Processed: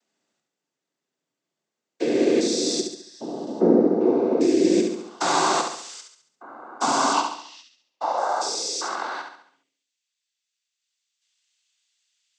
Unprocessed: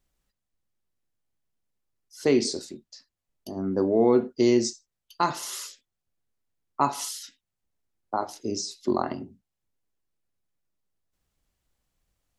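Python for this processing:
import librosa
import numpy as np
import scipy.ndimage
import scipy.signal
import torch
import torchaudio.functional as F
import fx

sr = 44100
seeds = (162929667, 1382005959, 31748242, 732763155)

p1 = fx.spec_steps(x, sr, hold_ms=400)
p2 = fx.noise_vocoder(p1, sr, seeds[0], bands=16)
p3 = fx.cabinet(p2, sr, low_hz=160.0, low_slope=12, high_hz=5800.0, hz=(420.0, 1000.0, 1500.0, 2800.0), db=(-10, 5, -8, 8), at=(7.13, 8.18))
p4 = fx.filter_sweep_highpass(p3, sr, from_hz=280.0, to_hz=3100.0, start_s=7.47, end_s=9.84, q=1.2)
p5 = p4 + fx.echo_feedback(p4, sr, ms=69, feedback_pct=46, wet_db=-6.0, dry=0)
p6 = fx.rider(p5, sr, range_db=5, speed_s=0.5)
y = p6 * 10.0 ** (8.0 / 20.0)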